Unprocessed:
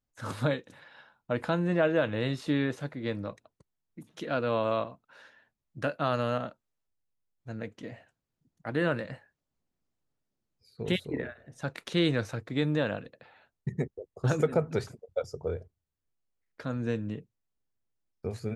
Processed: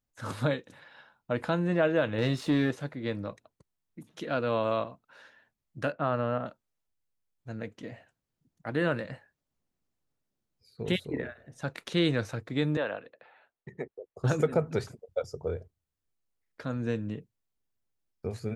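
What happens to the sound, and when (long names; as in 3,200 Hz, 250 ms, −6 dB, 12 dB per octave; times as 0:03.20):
0:02.18–0:02.71: leveller curve on the samples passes 1
0:05.92–0:06.46: low-pass filter 1,900 Hz
0:12.77–0:14.16: three-way crossover with the lows and the highs turned down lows −16 dB, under 340 Hz, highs −14 dB, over 3,400 Hz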